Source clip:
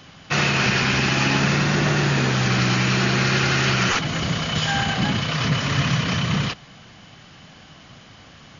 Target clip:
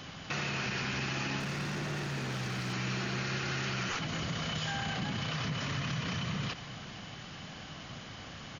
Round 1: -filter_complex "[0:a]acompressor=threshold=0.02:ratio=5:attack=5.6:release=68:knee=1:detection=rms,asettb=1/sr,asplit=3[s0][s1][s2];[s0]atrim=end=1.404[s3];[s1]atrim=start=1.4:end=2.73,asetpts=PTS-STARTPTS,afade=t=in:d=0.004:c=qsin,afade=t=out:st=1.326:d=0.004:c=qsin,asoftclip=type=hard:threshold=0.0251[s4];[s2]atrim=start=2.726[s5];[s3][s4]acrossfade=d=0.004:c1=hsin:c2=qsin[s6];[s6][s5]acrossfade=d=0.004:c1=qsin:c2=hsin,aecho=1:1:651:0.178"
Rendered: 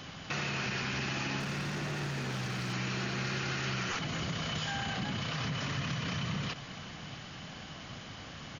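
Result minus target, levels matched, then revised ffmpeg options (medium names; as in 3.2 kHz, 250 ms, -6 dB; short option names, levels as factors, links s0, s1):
echo 189 ms late
-filter_complex "[0:a]acompressor=threshold=0.02:ratio=5:attack=5.6:release=68:knee=1:detection=rms,asettb=1/sr,asplit=3[s0][s1][s2];[s0]atrim=end=1.404[s3];[s1]atrim=start=1.4:end=2.73,asetpts=PTS-STARTPTS,afade=t=in:d=0.004:c=qsin,afade=t=out:st=1.326:d=0.004:c=qsin,asoftclip=type=hard:threshold=0.0251[s4];[s2]atrim=start=2.726[s5];[s3][s4]acrossfade=d=0.004:c1=hsin:c2=qsin[s6];[s6][s5]acrossfade=d=0.004:c1=qsin:c2=hsin,aecho=1:1:462:0.178"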